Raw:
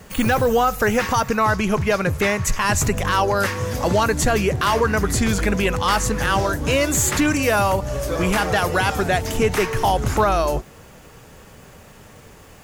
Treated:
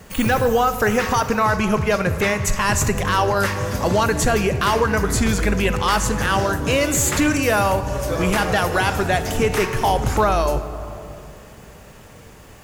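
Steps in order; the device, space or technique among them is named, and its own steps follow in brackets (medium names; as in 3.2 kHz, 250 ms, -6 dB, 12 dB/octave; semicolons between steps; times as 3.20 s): compressed reverb return (on a send at -6 dB: reverberation RT60 2.2 s, pre-delay 29 ms + compression, threshold -19 dBFS, peak gain reduction 7 dB)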